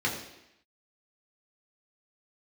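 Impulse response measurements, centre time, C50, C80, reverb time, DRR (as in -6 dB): 32 ms, 6.0 dB, 8.0 dB, 0.85 s, -4.0 dB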